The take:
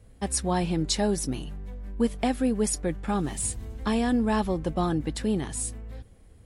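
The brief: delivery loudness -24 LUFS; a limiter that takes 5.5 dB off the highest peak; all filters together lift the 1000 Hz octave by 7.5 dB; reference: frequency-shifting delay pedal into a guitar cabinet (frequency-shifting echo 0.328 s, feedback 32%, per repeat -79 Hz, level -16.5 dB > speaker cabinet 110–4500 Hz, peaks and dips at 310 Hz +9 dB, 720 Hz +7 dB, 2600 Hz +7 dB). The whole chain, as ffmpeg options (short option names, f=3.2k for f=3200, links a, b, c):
-filter_complex "[0:a]equalizer=f=1k:t=o:g=4.5,alimiter=limit=-18dB:level=0:latency=1,asplit=4[a][b][c][d];[b]adelay=328,afreqshift=-79,volume=-16.5dB[e];[c]adelay=656,afreqshift=-158,volume=-26.4dB[f];[d]adelay=984,afreqshift=-237,volume=-36.3dB[g];[a][e][f][g]amix=inputs=4:normalize=0,highpass=110,equalizer=f=310:t=q:w=4:g=9,equalizer=f=720:t=q:w=4:g=7,equalizer=f=2.6k:t=q:w=4:g=7,lowpass=f=4.5k:w=0.5412,lowpass=f=4.5k:w=1.3066,volume=2.5dB"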